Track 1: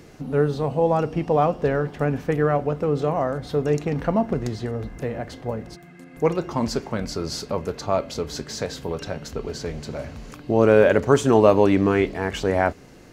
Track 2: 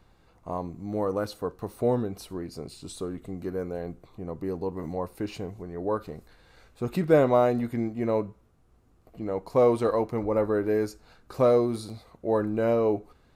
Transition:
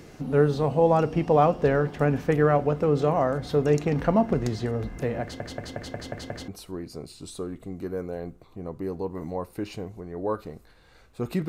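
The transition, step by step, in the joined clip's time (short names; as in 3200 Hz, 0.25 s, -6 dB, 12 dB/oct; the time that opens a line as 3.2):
track 1
5.22 stutter in place 0.18 s, 7 plays
6.48 switch to track 2 from 2.1 s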